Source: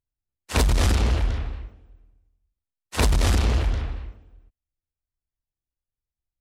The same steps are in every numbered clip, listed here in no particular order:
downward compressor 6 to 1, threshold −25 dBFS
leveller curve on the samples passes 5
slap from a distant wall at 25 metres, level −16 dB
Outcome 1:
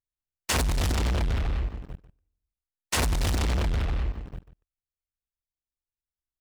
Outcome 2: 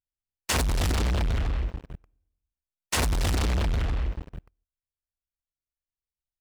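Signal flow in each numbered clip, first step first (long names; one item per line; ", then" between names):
leveller curve on the samples, then slap from a distant wall, then downward compressor
slap from a distant wall, then leveller curve on the samples, then downward compressor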